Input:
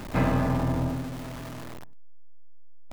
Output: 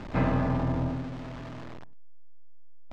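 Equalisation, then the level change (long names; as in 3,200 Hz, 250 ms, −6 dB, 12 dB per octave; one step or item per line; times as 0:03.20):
high-frequency loss of the air 140 metres
−1.5 dB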